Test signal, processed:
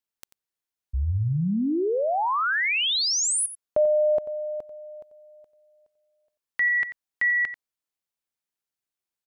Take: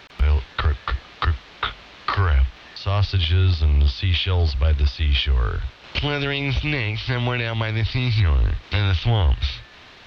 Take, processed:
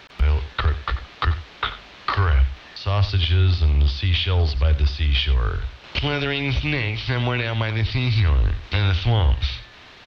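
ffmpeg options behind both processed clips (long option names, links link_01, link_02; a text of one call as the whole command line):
ffmpeg -i in.wav -af "aecho=1:1:90:0.2" out.wav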